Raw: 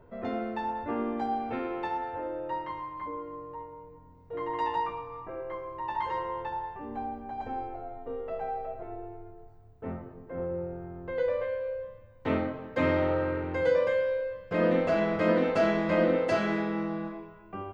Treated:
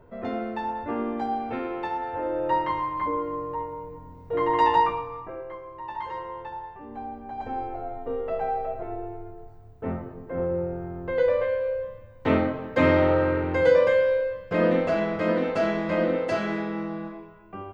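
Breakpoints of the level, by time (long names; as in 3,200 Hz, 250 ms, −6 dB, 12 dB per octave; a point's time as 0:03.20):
0:01.98 +2.5 dB
0:02.51 +10 dB
0:04.81 +10 dB
0:05.59 −2 dB
0:06.89 −2 dB
0:07.87 +6.5 dB
0:14.17 +6.5 dB
0:15.15 +0.5 dB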